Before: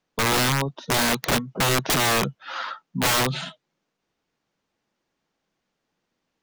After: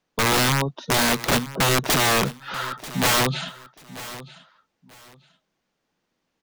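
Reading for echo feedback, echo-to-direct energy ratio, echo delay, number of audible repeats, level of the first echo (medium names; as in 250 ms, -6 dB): 23%, -16.5 dB, 938 ms, 2, -16.5 dB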